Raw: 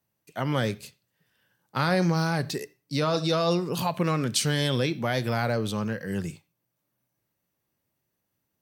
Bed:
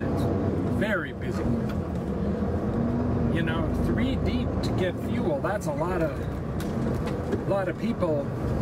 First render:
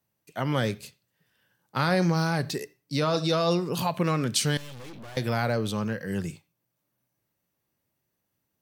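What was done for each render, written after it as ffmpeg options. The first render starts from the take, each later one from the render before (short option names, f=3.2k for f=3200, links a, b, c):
-filter_complex "[0:a]asettb=1/sr,asplit=3[a][b][c];[a]atrim=end=4.574[d];[b]atrim=start=4.57:end=5.17,asetpts=PTS-STARTPTS,afade=t=in:d=0.004:c=qsin,afade=t=out:st=0.596:d=0.004:c=qsin,aeval=exprs='(tanh(126*val(0)+0.8)-tanh(0.8))/126':c=same[e];[c]atrim=start=5.166[f];[d][e]acrossfade=d=0.004:c1=hsin:c2=qsin[g];[g][f]acrossfade=d=0.004:c1=qsin:c2=hsin"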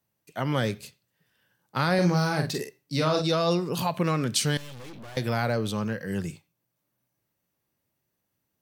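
-filter_complex "[0:a]asettb=1/sr,asplit=3[a][b][c];[a]atrim=end=1.944[d];[b]atrim=start=1.94:end=3.22,asetpts=PTS-STARTPTS,afade=t=in:d=0.004:c=qsin,afade=t=out:st=1.276:d=0.004:c=qsin,asplit=2[e][f];[f]adelay=45,volume=-5dB[g];[e][g]amix=inputs=2:normalize=0,atrim=end_sample=56448[h];[c]atrim=start=3.216[i];[d][h]acrossfade=d=0.004:c1=hsin:c2=qsin[j];[j][i]acrossfade=d=0.004:c1=qsin:c2=hsin"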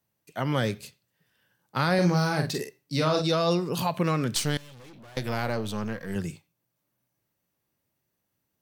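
-filter_complex "[0:a]asettb=1/sr,asplit=3[a][b][c];[a]atrim=end=4.354[d];[b]atrim=start=4.35:end=6.16,asetpts=PTS-STARTPTS,afade=t=in:d=0.004:c=qsin,afade=t=out:st=1.806:d=0.004:c=qsin,aeval=exprs='if(lt(val(0),0),0.447*val(0),val(0))':c=same[e];[c]atrim=start=6.156[f];[d][e]acrossfade=d=0.004:c1=hsin:c2=qsin[g];[g][f]acrossfade=d=0.004:c1=qsin:c2=hsin"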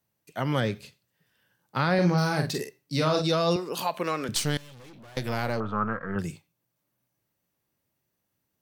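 -filter_complex "[0:a]asettb=1/sr,asplit=3[a][b][c];[a]atrim=end=0.604[d];[b]atrim=start=0.6:end=2.18,asetpts=PTS-STARTPTS,afade=t=in:d=0.004:c=qsin,afade=t=out:st=1.576:d=0.004:c=qsin,acrossover=split=4800[e][f];[f]acompressor=threshold=-54dB:ratio=4:attack=1:release=60[g];[e][g]amix=inputs=2:normalize=0[h];[c]atrim=start=2.176[i];[d][h]acrossfade=d=0.004:c1=hsin:c2=qsin[j];[j][i]acrossfade=d=0.004:c1=qsin:c2=hsin,asettb=1/sr,asplit=3[k][l][m];[k]atrim=end=3.564[n];[l]atrim=start=3.56:end=4.29,asetpts=PTS-STARTPTS,afade=t=in:d=0.004:c=qsin,afade=t=out:st=0.726:d=0.004:c=qsin,highpass=350[o];[m]atrim=start=4.286[p];[n][o]acrossfade=d=0.004:c1=hsin:c2=qsin[q];[q][p]acrossfade=d=0.004:c1=qsin:c2=hsin,asettb=1/sr,asplit=3[r][s][t];[r]atrim=end=5.604[u];[s]atrim=start=5.6:end=6.19,asetpts=PTS-STARTPTS,afade=t=in:d=0.004:c=qsin,afade=t=out:st=0.586:d=0.004:c=qsin,lowpass=f=1.3k:t=q:w=8.5[v];[t]atrim=start=6.186[w];[u][v]acrossfade=d=0.004:c1=hsin:c2=qsin[x];[x][w]acrossfade=d=0.004:c1=qsin:c2=hsin"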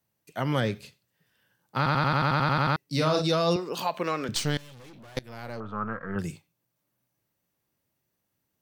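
-filter_complex "[0:a]asettb=1/sr,asplit=3[a][b][c];[a]atrim=end=3.544[d];[b]atrim=start=3.54:end=4.59,asetpts=PTS-STARTPTS,afade=t=in:d=0.004:c=qsin,afade=t=out:st=1.046:d=0.004:c=qsin,equalizer=f=11k:t=o:w=0.66:g=-10[e];[c]atrim=start=4.586[f];[d][e]acrossfade=d=0.004:c1=hsin:c2=qsin[g];[g][f]acrossfade=d=0.004:c1=qsin:c2=hsin,asplit=13[h][i][j][k][l][m][n][o][p][q][r][s][t];[h]atrim=end=1.862[u];[i]atrim=start=1.768:end=1.862[v];[j]atrim=start=1.768:end=1.862[w];[k]atrim=start=1.768:end=1.862[x];[l]atrim=start=1.768:end=1.862[y];[m]atrim=start=1.768:end=1.862[z];[n]atrim=start=1.768:end=1.862[aa];[o]atrim=start=1.768:end=1.862[ab];[p]atrim=start=1.768:end=1.862[ac];[q]atrim=start=1.768:end=1.862[ad];[r]atrim=start=1.768:end=1.862[ae];[s]atrim=start=2.758:end=5.19,asetpts=PTS-STARTPTS,afade=t=out:st=2.428:d=0.004:c=hsin:silence=0.112202[af];[t]atrim=start=5.19,asetpts=PTS-STARTPTS,afade=t=in:d=1.11:silence=0.112202[ag];[u][v]acrossfade=d=0.004:c1=hsin:c2=hsin[ah];[ah][w]acrossfade=d=0.004:c1=hsin:c2=hsin[ai];[ai][x]acrossfade=d=0.004:c1=hsin:c2=hsin[aj];[aj][y]acrossfade=d=0.004:c1=hsin:c2=hsin[ak];[ak][z]acrossfade=d=0.004:c1=hsin:c2=hsin[al];[al][aa]acrossfade=d=0.004:c1=hsin:c2=hsin[am];[am][ab]acrossfade=d=0.004:c1=hsin:c2=hsin[an];[an][ac]acrossfade=d=0.004:c1=hsin:c2=hsin[ao];[ao][ad]acrossfade=d=0.004:c1=hsin:c2=hsin[ap];[ap][ae]acrossfade=d=0.004:c1=hsin:c2=hsin[aq];[af][ag]concat=n=2:v=0:a=1[ar];[aq][ar]acrossfade=d=0.004:c1=hsin:c2=hsin"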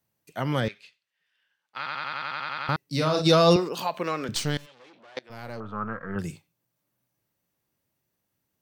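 -filter_complex "[0:a]asettb=1/sr,asplit=3[a][b][c];[a]atrim=end=0.684[d];[b]atrim=start=0.68:end=2.69,asetpts=PTS-STARTPTS,afade=t=in:d=0.004:c=qsin,afade=t=out:st=2.006:d=0.004:c=qsin,bandpass=f=2.5k:t=q:w=1.2[e];[c]atrim=start=2.686[f];[d][e]acrossfade=d=0.004:c1=hsin:c2=qsin[g];[g][f]acrossfade=d=0.004:c1=qsin:c2=hsin,asplit=3[h][i][j];[h]afade=t=out:st=3.25:d=0.02[k];[i]acontrast=73,afade=t=in:st=3.25:d=0.02,afade=t=out:st=3.67:d=0.02[l];[j]afade=t=in:st=3.67:d=0.02[m];[k][l][m]amix=inputs=3:normalize=0,asplit=3[n][o][p];[n]afade=t=out:st=4.65:d=0.02[q];[o]highpass=410,lowpass=4.4k,afade=t=in:st=4.65:d=0.02,afade=t=out:st=5.29:d=0.02[r];[p]afade=t=in:st=5.29:d=0.02[s];[q][r][s]amix=inputs=3:normalize=0"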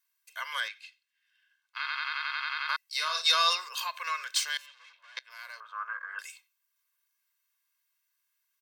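-af "highpass=f=1.2k:w=0.5412,highpass=f=1.2k:w=1.3066,aecho=1:1:1.9:0.76"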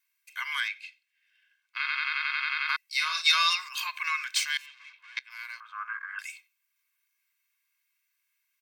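-af "highpass=f=990:w=0.5412,highpass=f=990:w=1.3066,equalizer=f=2.3k:w=3.7:g=11"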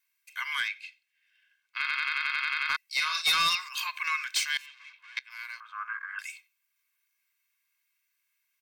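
-af "volume=20dB,asoftclip=hard,volume=-20dB"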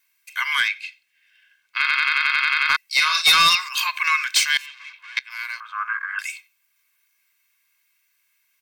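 -af "volume=10dB"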